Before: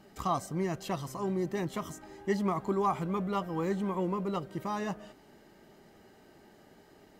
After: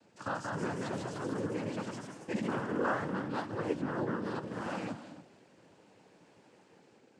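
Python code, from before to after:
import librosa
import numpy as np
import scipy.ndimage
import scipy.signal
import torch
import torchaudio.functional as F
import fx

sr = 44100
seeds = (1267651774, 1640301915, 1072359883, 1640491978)

y = fx.rev_gated(x, sr, seeds[0], gate_ms=310, shape='rising', drr_db=11.5)
y = fx.noise_vocoder(y, sr, seeds[1], bands=8)
y = fx.echo_pitch(y, sr, ms=197, semitones=1, count=3, db_per_echo=-3.0)
y = F.gain(torch.from_numpy(y), -5.5).numpy()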